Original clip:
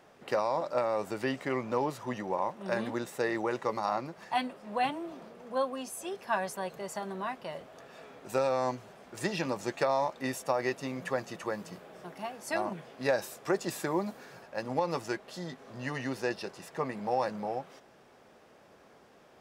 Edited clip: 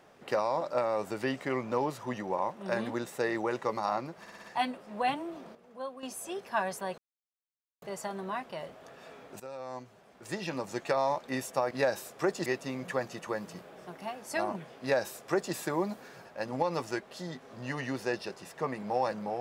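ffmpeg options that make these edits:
-filter_complex "[0:a]asplit=11[s0][s1][s2][s3][s4][s5][s6][s7][s8][s9][s10];[s0]atrim=end=4.262[s11];[s1]atrim=start=4.198:end=4.262[s12];[s2]atrim=start=4.198:end=4.262[s13];[s3]atrim=start=4.198:end=4.262[s14];[s4]atrim=start=4.198:end=5.312[s15];[s5]atrim=start=5.308:end=5.792,asetpts=PTS-STARTPTS,volume=0.355[s16];[s6]atrim=start=5.788:end=6.74,asetpts=PTS-STARTPTS,afade=t=out:st=0.948:d=0.004:c=hsin,apad=pad_dur=0.84[s17];[s7]atrim=start=6.74:end=8.32,asetpts=PTS-STARTPTS,afade=t=in:d=0.004:c=hsin,afade=t=out:st=1.576:d=0.004:c=hsin:silence=0.133352[s18];[s8]atrim=start=8.32:end=10.632,asetpts=PTS-STARTPTS,afade=t=in:d=1.67:silence=0.133352[s19];[s9]atrim=start=12.968:end=13.722[s20];[s10]atrim=start=10.628[s21];[s11][s12]acrossfade=d=0.004:c1=hsin:c2=hsin[s22];[s22][s13]acrossfade=d=0.004:c1=hsin:c2=hsin[s23];[s23][s14]acrossfade=d=0.004:c1=hsin:c2=hsin[s24];[s24][s15]acrossfade=d=0.004:c1=hsin:c2=hsin[s25];[s25][s16]acrossfade=d=0.004:c1=hsin:c2=hsin[s26];[s17][s18][s19]concat=n=3:v=0:a=1[s27];[s26][s27]acrossfade=d=0.004:c1=hsin:c2=hsin[s28];[s28][s20]acrossfade=d=0.004:c1=hsin:c2=hsin[s29];[s29][s21]acrossfade=d=0.004:c1=hsin:c2=hsin"

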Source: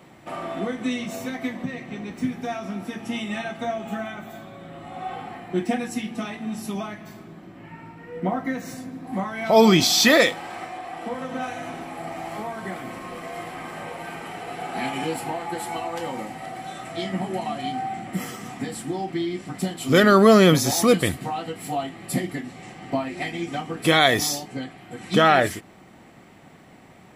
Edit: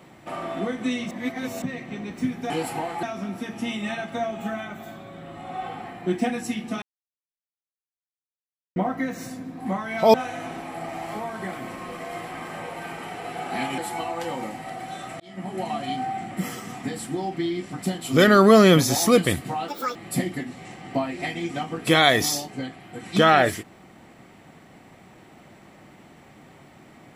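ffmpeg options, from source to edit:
-filter_complex "[0:a]asplit=12[s0][s1][s2][s3][s4][s5][s6][s7][s8][s9][s10][s11];[s0]atrim=end=1.112[s12];[s1]atrim=start=1.108:end=1.622,asetpts=PTS-STARTPTS,areverse[s13];[s2]atrim=start=1.618:end=2.502[s14];[s3]atrim=start=15.008:end=15.542[s15];[s4]atrim=start=2.498:end=6.29,asetpts=PTS-STARTPTS,afade=t=out:st=3.788:d=0.004:c=hsin[s16];[s5]atrim=start=6.29:end=8.23,asetpts=PTS-STARTPTS,volume=0[s17];[s6]atrim=start=8.23:end=9.612,asetpts=PTS-STARTPTS,afade=t=in:d=0.004:c=hsin[s18];[s7]atrim=start=11.368:end=15.012[s19];[s8]atrim=start=15.538:end=16.96,asetpts=PTS-STARTPTS,afade=t=out:st=1.418:d=0.004:c=hsin[s20];[s9]atrim=start=16.96:end=21.444,asetpts=PTS-STARTPTS,afade=t=in:d=0.48[s21];[s10]atrim=start=21.44:end=21.93,asetpts=PTS-STARTPTS,asetrate=78939,aresample=44100,atrim=end_sample=12072,asetpts=PTS-STARTPTS[s22];[s11]atrim=start=21.926[s23];[s12][s13]acrossfade=d=0.004:c1=hsin:c2=hsin[s24];[s24][s14]acrossfade=d=0.004:c1=hsin:c2=hsin[s25];[s25][s15]acrossfade=d=0.004:c1=hsin:c2=hsin[s26];[s16][s17][s18]concat=n=3:v=0:a=1[s27];[s26][s27]acrossfade=d=0.004:c1=hsin:c2=hsin[s28];[s28][s19]acrossfade=d=0.004:c1=hsin:c2=hsin[s29];[s20][s21]concat=n=2:v=0:a=1[s30];[s29][s30]acrossfade=d=0.004:c1=hsin:c2=hsin[s31];[s31][s22]acrossfade=d=0.004:c1=hsin:c2=hsin[s32];[s32][s23]acrossfade=d=0.004:c1=hsin:c2=hsin"

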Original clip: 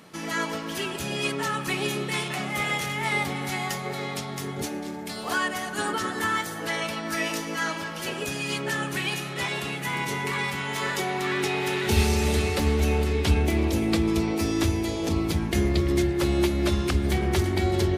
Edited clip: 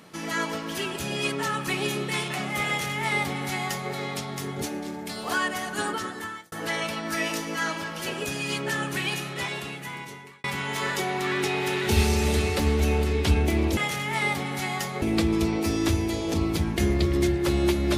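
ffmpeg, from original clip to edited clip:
-filter_complex "[0:a]asplit=5[s0][s1][s2][s3][s4];[s0]atrim=end=6.52,asetpts=PTS-STARTPTS,afade=t=out:st=5.8:d=0.72[s5];[s1]atrim=start=6.52:end=10.44,asetpts=PTS-STARTPTS,afade=t=in:d=0.004:c=hsin,afade=t=out:st=2.69:d=1.23[s6];[s2]atrim=start=10.44:end=13.772,asetpts=PTS-STARTPTS,afade=t=in:d=0.004:c=hsin[s7];[s3]atrim=start=2.668:end=3.922[s8];[s4]atrim=start=13.768[s9];[s5][s6][s7]concat=n=3:v=0:a=1[s10];[s10][s8]acrossfade=d=0.004:c1=hsin:c2=hsin[s11];[s11][s9]acrossfade=d=0.004:c1=hsin:c2=hsin"

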